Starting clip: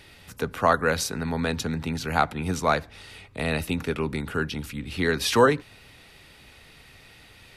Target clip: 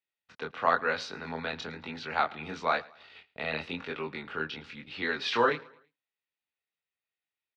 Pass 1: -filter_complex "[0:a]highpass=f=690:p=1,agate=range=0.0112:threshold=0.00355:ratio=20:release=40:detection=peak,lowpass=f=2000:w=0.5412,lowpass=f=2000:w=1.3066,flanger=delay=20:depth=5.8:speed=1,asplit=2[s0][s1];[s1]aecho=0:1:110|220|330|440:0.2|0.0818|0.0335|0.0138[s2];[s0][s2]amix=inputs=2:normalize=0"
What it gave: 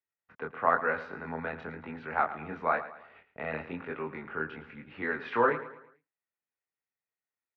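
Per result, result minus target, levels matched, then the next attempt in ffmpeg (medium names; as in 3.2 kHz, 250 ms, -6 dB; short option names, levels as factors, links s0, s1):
4 kHz band -17.5 dB; echo-to-direct +9 dB
-filter_complex "[0:a]highpass=f=690:p=1,agate=range=0.0112:threshold=0.00355:ratio=20:release=40:detection=peak,lowpass=f=4200:w=0.5412,lowpass=f=4200:w=1.3066,flanger=delay=20:depth=5.8:speed=1,asplit=2[s0][s1];[s1]aecho=0:1:110|220|330|440:0.2|0.0818|0.0335|0.0138[s2];[s0][s2]amix=inputs=2:normalize=0"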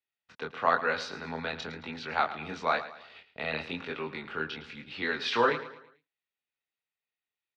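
echo-to-direct +9 dB
-filter_complex "[0:a]highpass=f=690:p=1,agate=range=0.0112:threshold=0.00355:ratio=20:release=40:detection=peak,lowpass=f=4200:w=0.5412,lowpass=f=4200:w=1.3066,flanger=delay=20:depth=5.8:speed=1,asplit=2[s0][s1];[s1]aecho=0:1:110|220|330:0.0708|0.029|0.0119[s2];[s0][s2]amix=inputs=2:normalize=0"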